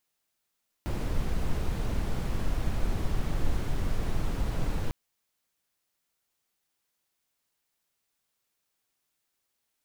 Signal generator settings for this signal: noise brown, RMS -26.5 dBFS 4.05 s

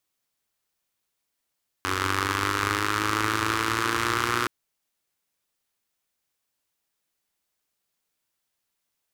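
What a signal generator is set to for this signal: four-cylinder engine model, changing speed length 2.62 s, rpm 2800, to 3600, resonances 95/330/1200 Hz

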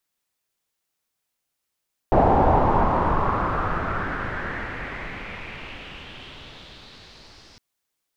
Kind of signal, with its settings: swept filtered noise pink, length 5.46 s lowpass, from 730 Hz, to 5.1 kHz, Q 3.4, exponential, gain ramp -35.5 dB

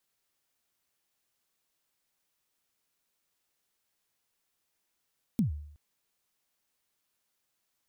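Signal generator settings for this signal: kick drum length 0.37 s, from 250 Hz, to 74 Hz, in 121 ms, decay 0.68 s, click on, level -20.5 dB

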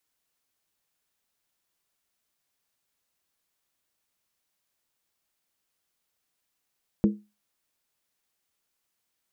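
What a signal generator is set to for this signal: skin hit, lowest mode 208 Hz, decay 0.27 s, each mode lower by 7 dB, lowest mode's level -14 dB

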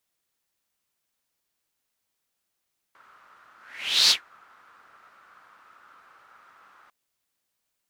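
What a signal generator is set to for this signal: whoosh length 3.95 s, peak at 1.15 s, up 0.56 s, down 0.13 s, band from 1.3 kHz, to 4.4 kHz, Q 5, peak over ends 38 dB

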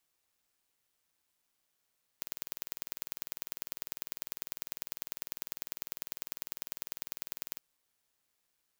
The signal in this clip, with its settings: pulse train 20 per s, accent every 2, -7.5 dBFS 5.38 s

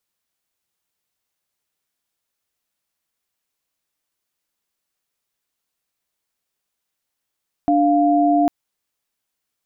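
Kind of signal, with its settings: chord D4/F5 sine, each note -15.5 dBFS 0.80 s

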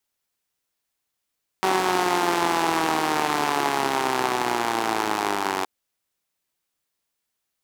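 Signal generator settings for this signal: four-cylinder engine model, changing speed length 4.02 s, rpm 5700, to 2800, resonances 370/810 Hz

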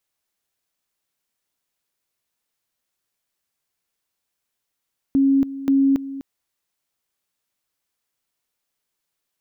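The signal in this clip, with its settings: two-level tone 273 Hz -13 dBFS, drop 15 dB, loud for 0.28 s, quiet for 0.25 s, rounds 2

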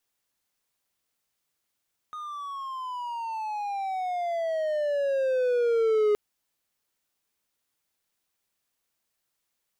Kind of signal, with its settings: gliding synth tone triangle, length 4.02 s, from 1.24 kHz, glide -19 st, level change +15.5 dB, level -17 dB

